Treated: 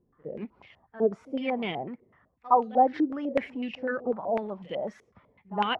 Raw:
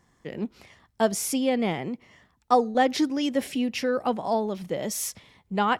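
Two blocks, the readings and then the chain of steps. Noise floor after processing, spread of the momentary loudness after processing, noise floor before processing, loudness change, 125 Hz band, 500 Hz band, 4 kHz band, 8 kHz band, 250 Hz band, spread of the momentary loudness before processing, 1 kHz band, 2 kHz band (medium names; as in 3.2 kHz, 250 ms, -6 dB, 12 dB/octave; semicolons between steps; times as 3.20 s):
-70 dBFS, 16 LU, -68 dBFS, -2.5 dB, -7.0 dB, -2.5 dB, -6.0 dB, under -35 dB, -5.0 dB, 12 LU, 0.0 dB, -4.0 dB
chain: coarse spectral quantiser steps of 15 dB; pre-echo 63 ms -18.5 dB; step-sequenced low-pass 8 Hz 430–2900 Hz; trim -7 dB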